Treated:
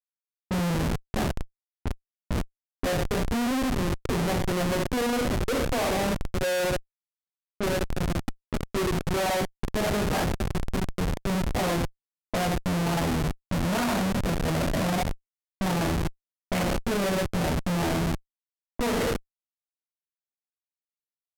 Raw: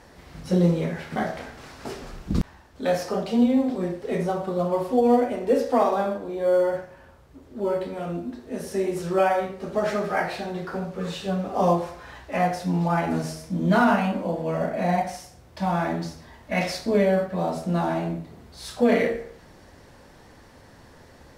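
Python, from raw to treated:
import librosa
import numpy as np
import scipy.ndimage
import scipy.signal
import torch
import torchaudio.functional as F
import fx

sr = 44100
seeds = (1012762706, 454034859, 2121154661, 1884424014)

y = fx.schmitt(x, sr, flips_db=-25.5)
y = fx.env_lowpass(y, sr, base_hz=850.0, full_db=-26.0)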